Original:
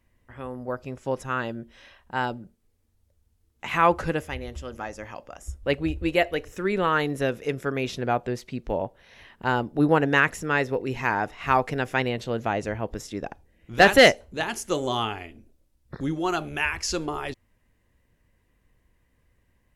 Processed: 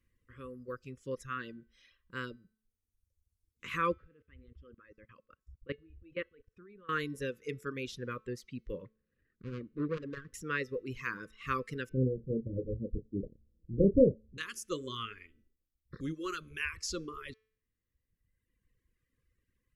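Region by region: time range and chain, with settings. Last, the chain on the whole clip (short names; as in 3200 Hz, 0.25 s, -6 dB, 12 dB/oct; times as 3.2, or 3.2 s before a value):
3.94–6.89 level quantiser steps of 21 dB + air absorption 390 m
8.85–10.34 median filter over 41 samples + air absorption 170 m + core saturation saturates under 500 Hz
11.89–14.38 steep low-pass 690 Hz 96 dB/oct + low shelf 350 Hz +11 dB + doubler 31 ms -7 dB
whole clip: elliptic band-stop 520–1100 Hz, stop band 50 dB; de-hum 218.5 Hz, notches 30; reverb removal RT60 1.6 s; gain -8.5 dB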